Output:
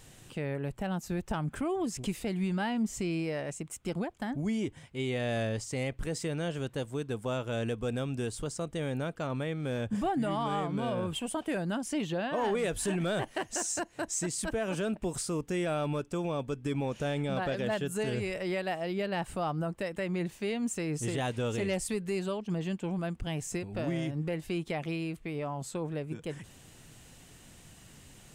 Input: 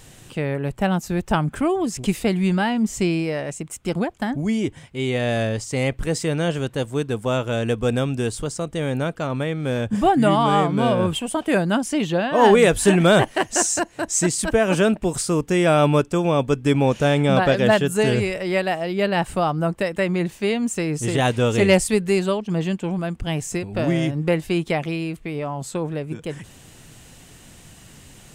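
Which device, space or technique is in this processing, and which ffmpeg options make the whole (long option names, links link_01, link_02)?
soft clipper into limiter: -af "asoftclip=type=tanh:threshold=-6.5dB,alimiter=limit=-15.5dB:level=0:latency=1:release=176,volume=-8dB"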